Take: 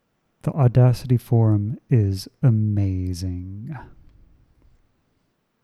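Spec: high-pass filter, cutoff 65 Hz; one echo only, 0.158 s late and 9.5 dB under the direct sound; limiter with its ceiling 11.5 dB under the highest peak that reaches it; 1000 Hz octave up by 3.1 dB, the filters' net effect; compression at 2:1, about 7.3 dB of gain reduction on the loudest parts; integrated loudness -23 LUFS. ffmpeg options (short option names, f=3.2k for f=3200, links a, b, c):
-af "highpass=65,equalizer=f=1k:t=o:g=4.5,acompressor=threshold=-25dB:ratio=2,alimiter=limit=-24dB:level=0:latency=1,aecho=1:1:158:0.335,volume=10dB"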